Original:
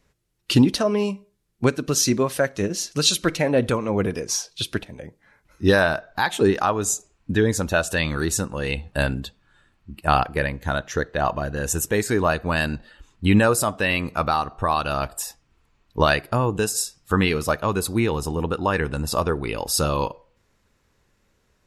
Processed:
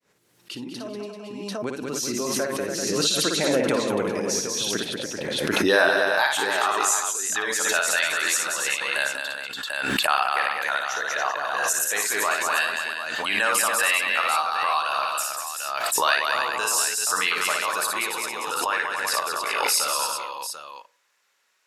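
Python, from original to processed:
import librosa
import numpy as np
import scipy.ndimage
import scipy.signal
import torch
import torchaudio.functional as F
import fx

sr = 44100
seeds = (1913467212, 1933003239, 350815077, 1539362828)

y = fx.fade_in_head(x, sr, length_s=6.02)
y = fx.filter_sweep_highpass(y, sr, from_hz=230.0, to_hz=1100.0, start_s=5.02, end_s=6.36, q=0.72)
y = fx.echo_multitap(y, sr, ms=(58, 191, 287, 388, 742), db=(-4.0, -5.5, -6.5, -9.0, -10.5))
y = fx.pre_swell(y, sr, db_per_s=25.0)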